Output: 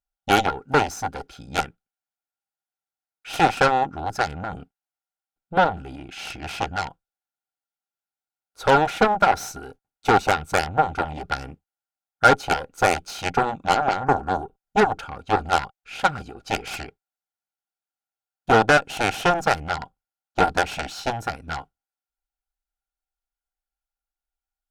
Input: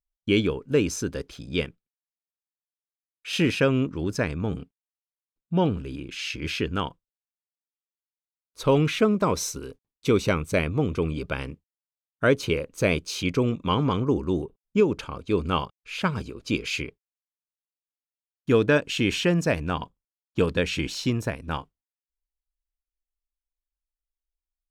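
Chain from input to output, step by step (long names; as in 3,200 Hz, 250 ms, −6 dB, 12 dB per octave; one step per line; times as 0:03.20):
harmonic generator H 6 −19 dB, 7 −11 dB, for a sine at −9 dBFS
hollow resonant body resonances 780/1,400 Hz, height 17 dB, ringing for 35 ms
level −1.5 dB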